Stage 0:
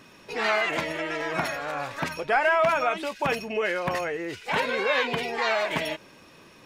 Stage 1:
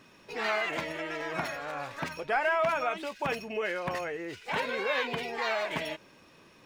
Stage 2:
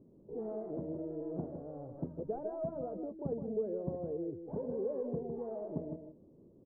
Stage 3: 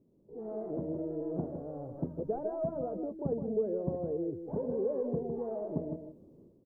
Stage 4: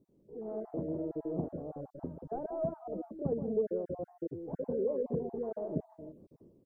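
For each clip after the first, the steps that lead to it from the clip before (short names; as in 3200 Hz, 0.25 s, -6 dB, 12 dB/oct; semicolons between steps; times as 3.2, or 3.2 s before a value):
median filter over 3 samples; gain -5.5 dB
inverse Chebyshev low-pass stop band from 2800 Hz, stop band 80 dB; echo 0.158 s -8.5 dB; gain +1 dB
AGC gain up to 12 dB; gain -8 dB
random spectral dropouts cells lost 23%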